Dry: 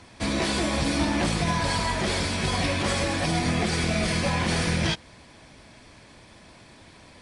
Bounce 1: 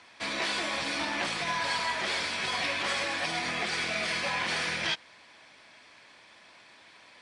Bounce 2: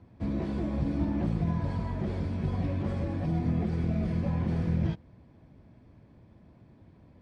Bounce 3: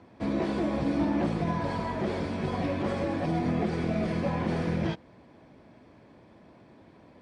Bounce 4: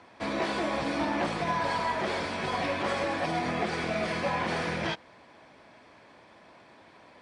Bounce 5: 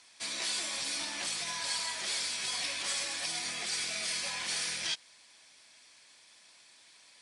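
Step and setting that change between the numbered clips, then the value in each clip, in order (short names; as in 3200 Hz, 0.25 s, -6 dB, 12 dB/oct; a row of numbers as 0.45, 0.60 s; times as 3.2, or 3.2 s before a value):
band-pass, frequency: 2200, 110, 320, 840, 7900 Hz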